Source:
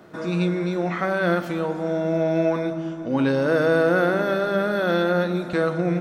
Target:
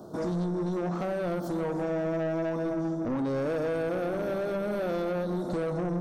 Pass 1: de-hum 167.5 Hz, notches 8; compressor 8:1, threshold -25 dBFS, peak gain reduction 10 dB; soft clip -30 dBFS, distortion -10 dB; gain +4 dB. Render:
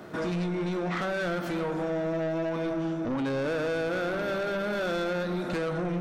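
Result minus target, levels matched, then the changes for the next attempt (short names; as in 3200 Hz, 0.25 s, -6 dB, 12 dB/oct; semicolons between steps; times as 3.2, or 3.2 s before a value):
2000 Hz band +7.5 dB
add after compressor: Butterworth band-stop 2200 Hz, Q 0.58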